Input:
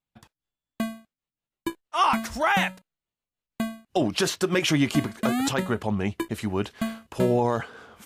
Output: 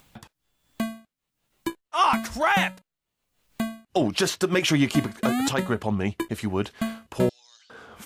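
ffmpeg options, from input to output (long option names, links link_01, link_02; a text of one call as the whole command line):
ffmpeg -i in.wav -filter_complex "[0:a]acompressor=mode=upward:threshold=-36dB:ratio=2.5,asettb=1/sr,asplit=3[link_01][link_02][link_03];[link_01]atrim=end=7.294[link_04];[link_02]atrim=start=7.29:end=7.7,asetpts=PTS-STARTPTS,afade=type=in:duration=0.004:curve=qsin,afade=type=out:start_time=0.406:duration=0.004:curve=qsin,asuperpass=centerf=4900:order=4:qfactor=2[link_05];[link_03]atrim=start=7.696[link_06];[link_04][link_05]acrossfade=duration=0.004:curve1=hsin:curve2=qsin[link_07];[link_07][link_06]acrossfade=duration=0.004:curve1=qsin:curve2=hsin,aeval=exprs='0.282*(cos(1*acos(clip(val(0)/0.282,-1,1)))-cos(1*PI/2))+0.00355*(cos(7*acos(clip(val(0)/0.282,-1,1)))-cos(7*PI/2))':channel_layout=same,volume=1dB" out.wav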